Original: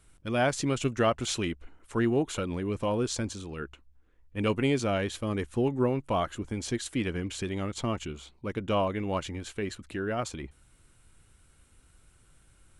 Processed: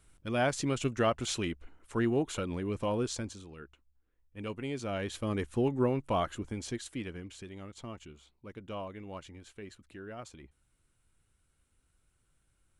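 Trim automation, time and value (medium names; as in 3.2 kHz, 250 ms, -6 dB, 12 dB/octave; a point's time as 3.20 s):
3.01 s -3 dB
3.64 s -11.5 dB
4.66 s -11.5 dB
5.23 s -2 dB
6.31 s -2 dB
7.46 s -13 dB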